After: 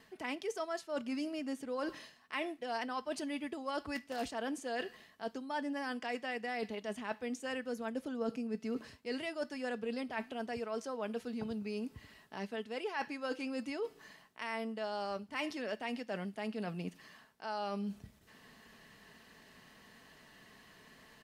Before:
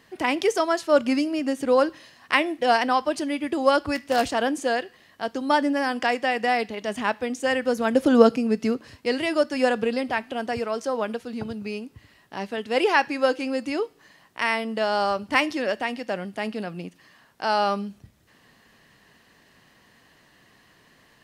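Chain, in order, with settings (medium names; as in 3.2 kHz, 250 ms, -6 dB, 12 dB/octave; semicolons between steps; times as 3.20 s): gate with hold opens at -53 dBFS; comb 4.6 ms, depth 34%; reverse; compression 6:1, threshold -34 dBFS, peak gain reduction 24.5 dB; reverse; trim -2.5 dB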